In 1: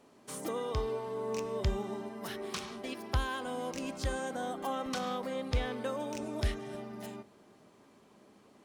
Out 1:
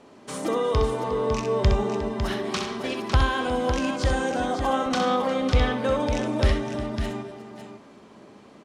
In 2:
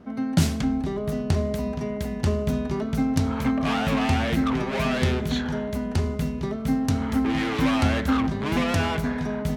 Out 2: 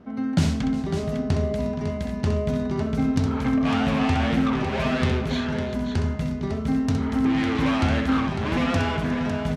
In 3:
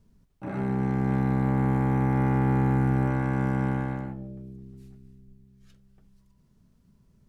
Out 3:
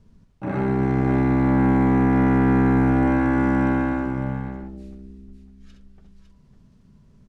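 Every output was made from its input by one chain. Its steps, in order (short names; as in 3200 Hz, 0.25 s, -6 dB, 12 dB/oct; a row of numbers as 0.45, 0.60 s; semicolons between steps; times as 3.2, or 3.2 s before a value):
air absorption 57 m; tapped delay 64/358/553 ms -6.5/-16/-8 dB; normalise peaks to -9 dBFS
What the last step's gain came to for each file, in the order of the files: +10.5, -1.0, +7.0 dB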